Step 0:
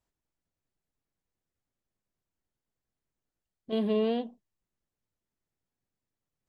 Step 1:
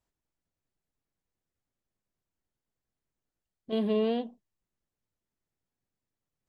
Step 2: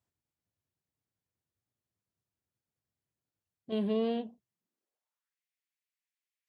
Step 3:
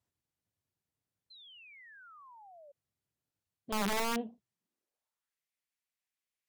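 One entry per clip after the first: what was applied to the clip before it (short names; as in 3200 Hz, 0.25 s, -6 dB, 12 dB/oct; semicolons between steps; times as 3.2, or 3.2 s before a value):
nothing audible
high-pass sweep 95 Hz -> 2200 Hz, 4.4–5.39; wow and flutter 65 cents; gain -4 dB
treble ducked by the level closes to 1700 Hz, closed at -27.5 dBFS; wrapped overs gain 26.5 dB; painted sound fall, 1.3–2.72, 550–4200 Hz -55 dBFS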